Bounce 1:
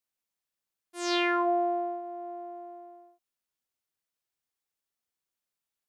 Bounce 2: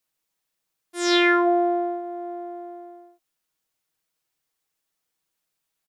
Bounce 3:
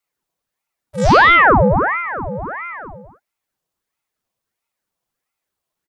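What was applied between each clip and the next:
comb filter 6.3 ms, depth 47%; level +7.5 dB
hollow resonant body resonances 340/540/830 Hz, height 15 dB, ringing for 40 ms; ring modulator whose carrier an LFO sweeps 940 Hz, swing 85%, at 1.5 Hz

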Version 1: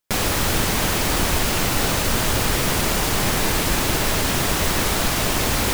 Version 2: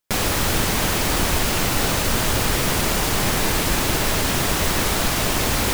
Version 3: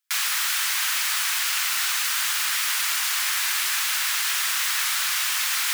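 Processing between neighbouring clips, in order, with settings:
no processing that can be heard
high-pass filter 1,300 Hz 24 dB per octave

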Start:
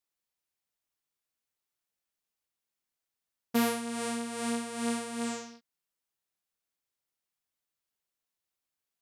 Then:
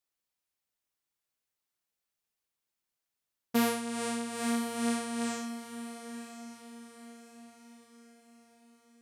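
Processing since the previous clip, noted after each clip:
feedback delay with all-pass diffusion 1,008 ms, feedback 44%, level −11 dB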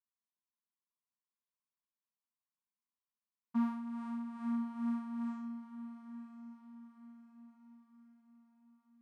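pair of resonant band-passes 480 Hz, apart 2.2 octaves
level −1.5 dB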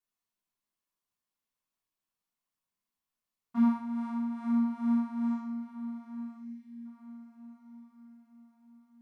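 gain on a spectral selection 0:06.37–0:06.85, 360–1,600 Hz −21 dB
rectangular room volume 380 cubic metres, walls furnished, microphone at 3.3 metres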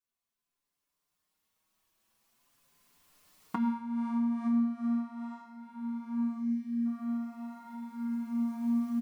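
camcorder AGC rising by 8.8 dB per second
barber-pole flanger 5.6 ms +0.46 Hz

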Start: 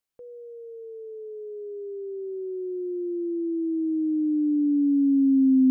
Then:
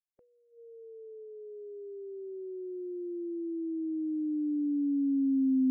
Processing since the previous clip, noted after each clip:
noise reduction from a noise print of the clip's start 18 dB
level −8 dB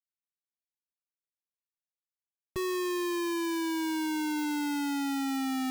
comparator with hysteresis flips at −36.5 dBFS
level +2 dB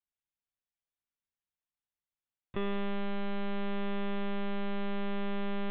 one-pitch LPC vocoder at 8 kHz 200 Hz

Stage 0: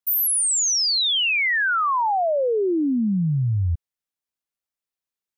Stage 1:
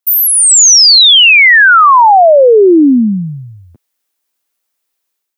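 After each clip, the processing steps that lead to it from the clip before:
high-pass filter 240 Hz 24 dB per octave
high-shelf EQ 9,800 Hz +6 dB
automatic gain control gain up to 10 dB
level +6.5 dB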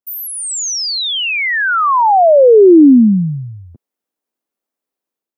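tilt shelving filter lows +9 dB
level −6.5 dB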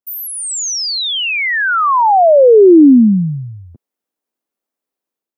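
no processing that can be heard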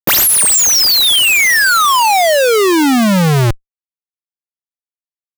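brickwall limiter −8.5 dBFS, peak gain reduction 7 dB
comparator with hysteresis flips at −25 dBFS
level +6 dB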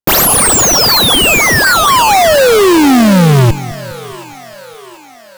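in parallel at −4 dB: sample-and-hold swept by an LFO 18×, swing 60% 4 Hz
on the sum: echo with a time of its own for lows and highs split 370 Hz, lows 205 ms, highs 733 ms, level −16 dB

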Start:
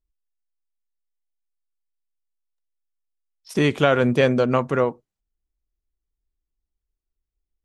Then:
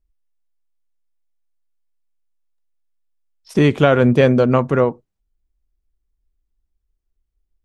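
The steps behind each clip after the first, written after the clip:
spectral tilt −1.5 dB per octave
level +3 dB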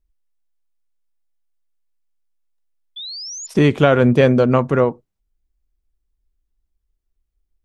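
sound drawn into the spectrogram rise, 0:02.96–0:03.47, 3,400–7,200 Hz −31 dBFS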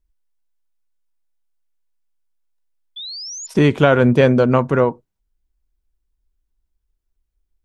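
hollow resonant body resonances 950/1,500 Hz, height 6 dB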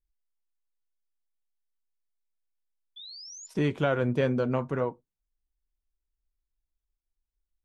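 flanger 0.78 Hz, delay 5.7 ms, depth 1.9 ms, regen −67%
level −9 dB

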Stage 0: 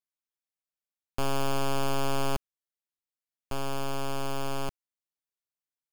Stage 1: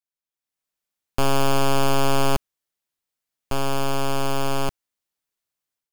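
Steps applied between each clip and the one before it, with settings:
automatic gain control gain up to 11 dB
level −2.5 dB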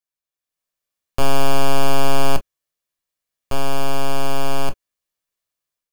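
convolution reverb, pre-delay 8 ms, DRR 9 dB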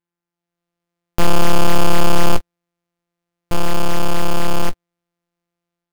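samples sorted by size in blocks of 256 samples
level +2.5 dB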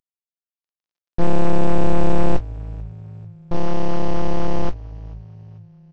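variable-slope delta modulation 32 kbit/s
echo with shifted repeats 441 ms, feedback 49%, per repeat −54 Hz, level −23.5 dB
level −2 dB

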